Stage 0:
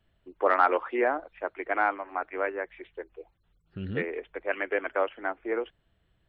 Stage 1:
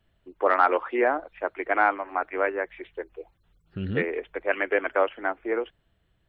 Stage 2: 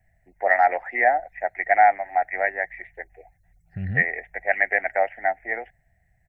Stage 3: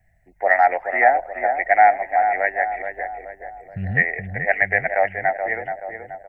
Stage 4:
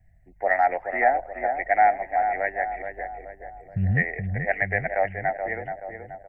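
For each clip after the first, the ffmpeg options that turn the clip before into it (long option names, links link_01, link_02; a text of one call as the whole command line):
ffmpeg -i in.wav -af "dynaudnorm=framelen=300:gausssize=7:maxgain=3dB,volume=1.5dB" out.wav
ffmpeg -i in.wav -af "firequalizer=gain_entry='entry(140,0);entry(310,-19);entry(470,-14);entry(740,7);entry(1100,-28);entry(1900,10);entry(3100,-26);entry(5700,1)':delay=0.05:min_phase=1,volume=4.5dB" out.wav
ffmpeg -i in.wav -filter_complex "[0:a]asplit=2[link_01][link_02];[link_02]adelay=427,lowpass=frequency=1300:poles=1,volume=-6dB,asplit=2[link_03][link_04];[link_04]adelay=427,lowpass=frequency=1300:poles=1,volume=0.54,asplit=2[link_05][link_06];[link_06]adelay=427,lowpass=frequency=1300:poles=1,volume=0.54,asplit=2[link_07][link_08];[link_08]adelay=427,lowpass=frequency=1300:poles=1,volume=0.54,asplit=2[link_09][link_10];[link_10]adelay=427,lowpass=frequency=1300:poles=1,volume=0.54,asplit=2[link_11][link_12];[link_12]adelay=427,lowpass=frequency=1300:poles=1,volume=0.54,asplit=2[link_13][link_14];[link_14]adelay=427,lowpass=frequency=1300:poles=1,volume=0.54[link_15];[link_01][link_03][link_05][link_07][link_09][link_11][link_13][link_15]amix=inputs=8:normalize=0,volume=2.5dB" out.wav
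ffmpeg -i in.wav -af "lowshelf=frequency=330:gain=12,volume=-7dB" out.wav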